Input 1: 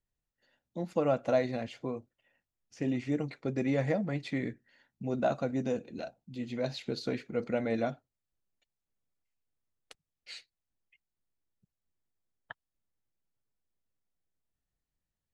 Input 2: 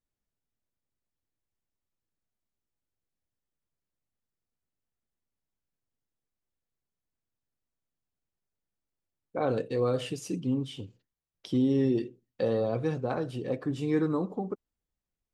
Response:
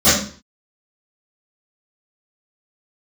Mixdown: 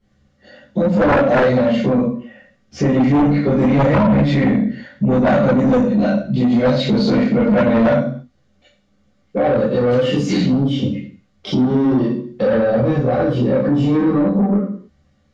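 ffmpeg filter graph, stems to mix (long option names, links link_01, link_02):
-filter_complex "[0:a]volume=2dB,asplit=2[link_01][link_02];[link_02]volume=-5dB[link_03];[1:a]asoftclip=type=tanh:threshold=-24.5dB,volume=0dB,asplit=2[link_04][link_05];[link_05]volume=-9dB[link_06];[2:a]atrim=start_sample=2205[link_07];[link_03][link_06]amix=inputs=2:normalize=0[link_08];[link_08][link_07]afir=irnorm=-1:irlink=0[link_09];[link_01][link_04][link_09]amix=inputs=3:normalize=0,acontrast=65,lowpass=4000,alimiter=limit=-9.5dB:level=0:latency=1:release=419"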